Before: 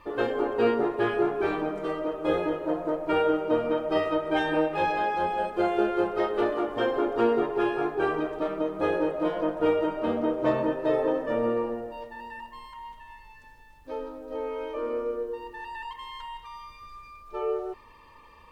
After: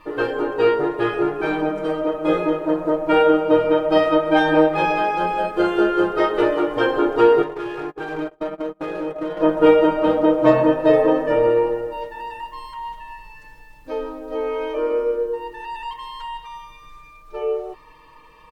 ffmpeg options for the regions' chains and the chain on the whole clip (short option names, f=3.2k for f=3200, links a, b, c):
-filter_complex "[0:a]asettb=1/sr,asplit=3[a][b][c];[a]atrim=end=7.424[d];[b]atrim=start=7.42:end=9.41,asetpts=PTS-STARTPTS,afade=t=in:d=0.004:c=qsin,afade=t=out:st=1.986:d=0.004:c=qsin,agate=range=-36dB:threshold=-31dB:ratio=16:release=100:detection=peak,acompressor=threshold=-30dB:ratio=16:attack=3.2:release=140:knee=1:detection=peak,volume=30.5dB,asoftclip=hard,volume=-30.5dB[e];[c]atrim=start=9.406[f];[d][e]acrossfade=d=0.004:c1=hsin:c2=qsin[g];[g][f]acrossfade=d=0.004:c1=qsin:c2=hsin,aecho=1:1:6.4:0.83,dynaudnorm=f=500:g=17:m=3.5dB,volume=3dB"